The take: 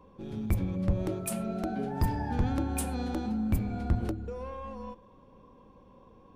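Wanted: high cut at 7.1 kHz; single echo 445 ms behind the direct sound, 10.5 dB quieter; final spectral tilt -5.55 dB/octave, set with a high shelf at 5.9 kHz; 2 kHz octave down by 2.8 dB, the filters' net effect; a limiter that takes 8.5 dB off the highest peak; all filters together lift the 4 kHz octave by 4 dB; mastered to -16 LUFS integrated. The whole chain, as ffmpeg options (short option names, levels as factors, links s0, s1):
-af "lowpass=7100,equalizer=f=2000:t=o:g=-5.5,equalizer=f=4000:t=o:g=8,highshelf=f=5900:g=-3.5,alimiter=level_in=1.12:limit=0.0631:level=0:latency=1,volume=0.891,aecho=1:1:445:0.299,volume=8.41"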